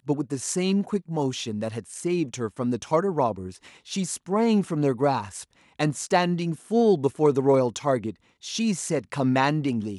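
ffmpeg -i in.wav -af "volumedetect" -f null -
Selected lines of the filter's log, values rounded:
mean_volume: -24.9 dB
max_volume: -6.9 dB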